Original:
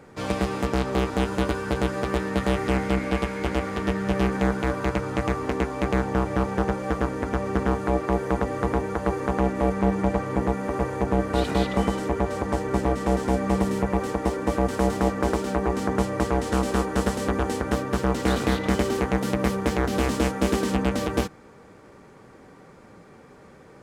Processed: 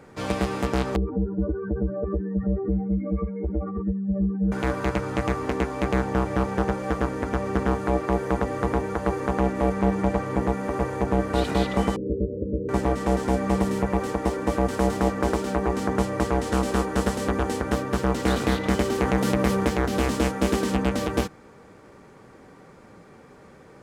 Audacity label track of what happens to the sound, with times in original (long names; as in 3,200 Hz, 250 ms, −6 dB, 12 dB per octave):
0.960000	4.520000	expanding power law on the bin magnitudes exponent 3.2
11.960000	12.690000	Butterworth low-pass 550 Hz 96 dB per octave
19.000000	19.680000	envelope flattener amount 50%